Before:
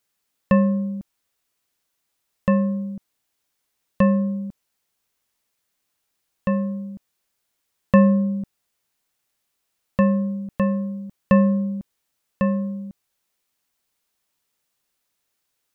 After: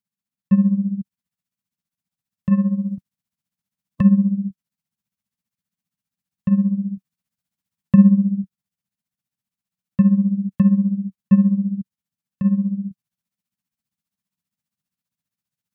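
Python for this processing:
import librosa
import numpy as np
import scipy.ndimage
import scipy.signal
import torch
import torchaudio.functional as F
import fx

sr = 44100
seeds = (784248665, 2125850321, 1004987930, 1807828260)

y = fx.spec_clip(x, sr, under_db=13, at=(2.51, 4.01), fade=0.02)
y = scipy.signal.sosfilt(scipy.signal.butter(2, 88.0, 'highpass', fs=sr, output='sos'), y)
y = fx.low_shelf_res(y, sr, hz=270.0, db=12.0, q=3.0)
y = fx.rider(y, sr, range_db=5, speed_s=0.5)
y = y * (1.0 - 0.76 / 2.0 + 0.76 / 2.0 * np.cos(2.0 * np.pi * 15.0 * (np.arange(len(y)) / sr)))
y = y * librosa.db_to_amplitude(-10.0)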